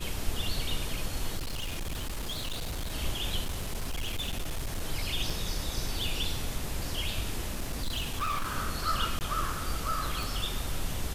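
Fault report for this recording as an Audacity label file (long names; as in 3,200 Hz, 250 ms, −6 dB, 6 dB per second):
1.370000	2.940000	clipping −30.5 dBFS
3.430000	4.810000	clipping −28.5 dBFS
5.300000	5.300000	drop-out 4.3 ms
7.470000	8.570000	clipping −27.5 dBFS
9.190000	9.210000	drop-out 19 ms
10.230000	10.230000	click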